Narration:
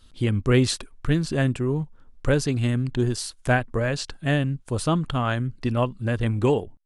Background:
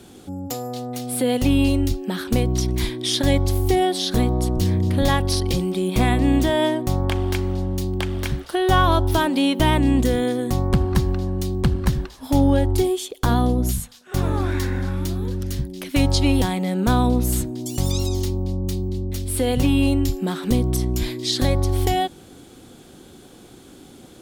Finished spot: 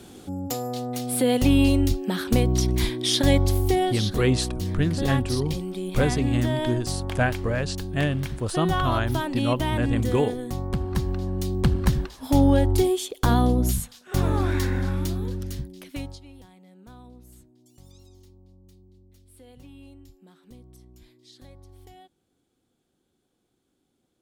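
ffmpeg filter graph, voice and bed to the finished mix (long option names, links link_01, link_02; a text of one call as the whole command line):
ffmpeg -i stem1.wav -i stem2.wav -filter_complex "[0:a]adelay=3700,volume=-2dB[link_01];[1:a]volume=7dB,afade=type=out:start_time=3.43:duration=0.72:silence=0.398107,afade=type=in:start_time=10.77:duration=0.99:silence=0.421697,afade=type=out:start_time=14.92:duration=1.28:silence=0.0398107[link_02];[link_01][link_02]amix=inputs=2:normalize=0" out.wav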